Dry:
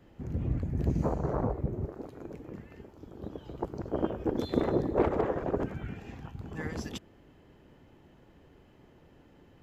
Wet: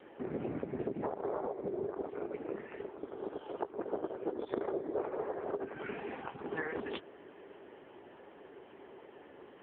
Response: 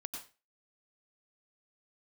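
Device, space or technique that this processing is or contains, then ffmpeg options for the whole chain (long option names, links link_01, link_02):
voicemail: -filter_complex "[0:a]asettb=1/sr,asplit=3[link_01][link_02][link_03];[link_01]atrim=end=3.074[link_04];[link_02]atrim=start=3.07:end=3.78,asetpts=PTS-STARTPTS,afade=type=in:duration=0.004:curve=qsin,afade=type=out:start_time=0.706:duration=0.004:curve=qsin,highpass=frequency=370:poles=1[link_05];[link_03]atrim=start=3.776[link_06];[link_04][link_05]acrossfade=duration=0.004:curve1=hsin:curve2=qsin[link_07];[link_07][link_06]acrossfade=duration=0.004:curve1=qsin:curve2=hsin,highpass=440,lowpass=2600,equalizer=frequency=400:width_type=o:width=0.21:gain=6,acompressor=threshold=-43dB:ratio=12,volume=11.5dB" -ar 8000 -c:a libopencore_amrnb -b:a 6700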